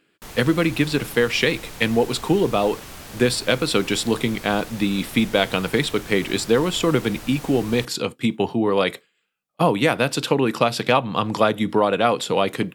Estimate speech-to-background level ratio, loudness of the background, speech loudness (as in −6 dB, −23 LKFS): 17.0 dB, −38.0 LKFS, −21.0 LKFS